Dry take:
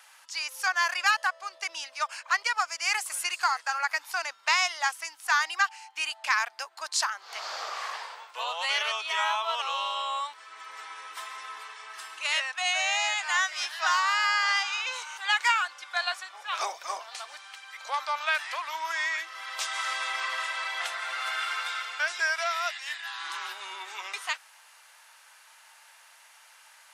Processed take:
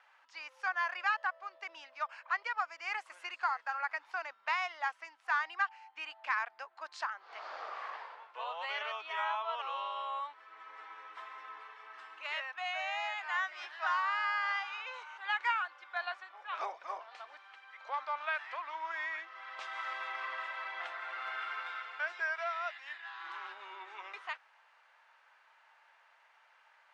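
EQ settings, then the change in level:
low-pass filter 2,100 Hz 12 dB per octave
low-shelf EQ 270 Hz +6.5 dB
−6.5 dB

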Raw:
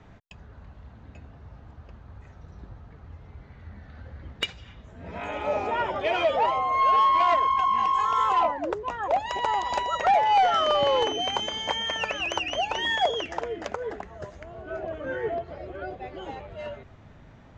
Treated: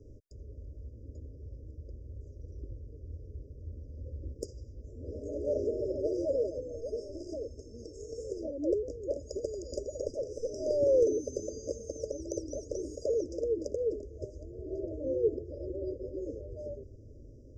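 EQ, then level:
linear-phase brick-wall band-stop 660–4,800 Hz
high-shelf EQ 6,000 Hz −10 dB
phaser with its sweep stopped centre 680 Hz, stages 6
+3.5 dB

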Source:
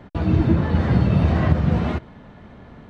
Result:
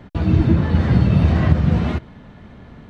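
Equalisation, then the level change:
parametric band 730 Hz −4.5 dB 2.6 octaves
+3.5 dB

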